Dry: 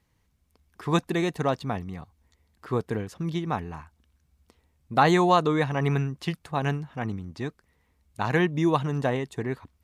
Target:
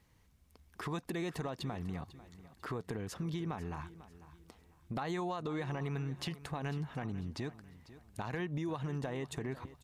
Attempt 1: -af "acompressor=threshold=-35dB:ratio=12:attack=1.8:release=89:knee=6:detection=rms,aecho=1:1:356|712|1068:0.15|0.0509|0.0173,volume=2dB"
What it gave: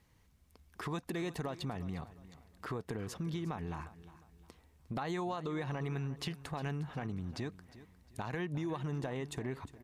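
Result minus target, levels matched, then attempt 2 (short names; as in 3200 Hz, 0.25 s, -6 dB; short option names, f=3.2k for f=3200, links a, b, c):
echo 0.14 s early
-af "acompressor=threshold=-35dB:ratio=12:attack=1.8:release=89:knee=6:detection=rms,aecho=1:1:496|992|1488:0.15|0.0509|0.0173,volume=2dB"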